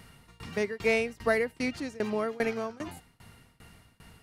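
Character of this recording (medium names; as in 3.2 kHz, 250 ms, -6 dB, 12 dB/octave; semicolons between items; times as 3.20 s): tremolo saw down 2.5 Hz, depth 95%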